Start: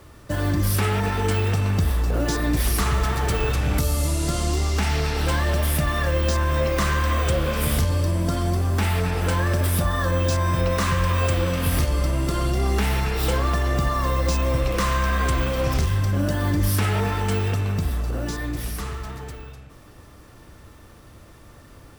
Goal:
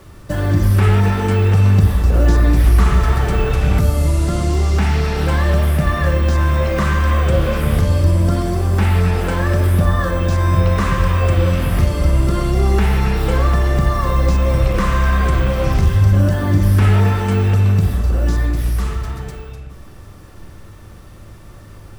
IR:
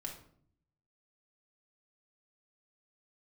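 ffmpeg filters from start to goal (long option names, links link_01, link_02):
-filter_complex "[0:a]acrossover=split=2600[link_01][link_02];[link_02]acompressor=threshold=-37dB:ratio=4:attack=1:release=60[link_03];[link_01][link_03]amix=inputs=2:normalize=0,asplit=2[link_04][link_05];[link_05]lowshelf=frequency=260:gain=7.5[link_06];[1:a]atrim=start_sample=2205,asetrate=28665,aresample=44100[link_07];[link_06][link_07]afir=irnorm=-1:irlink=0,volume=-3.5dB[link_08];[link_04][link_08]amix=inputs=2:normalize=0"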